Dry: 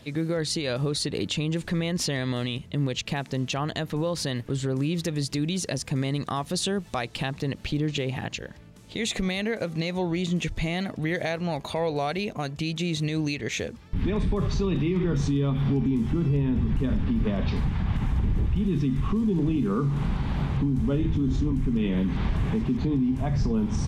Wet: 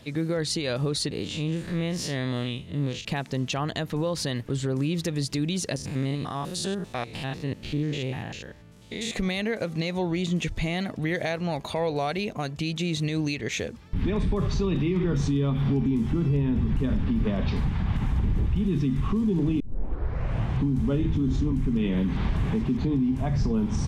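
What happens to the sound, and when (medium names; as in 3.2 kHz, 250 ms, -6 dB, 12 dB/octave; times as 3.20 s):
1.11–3.05 s: spectral blur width 89 ms
5.76–9.14 s: spectrogram pixelated in time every 100 ms
19.60 s: tape start 1.02 s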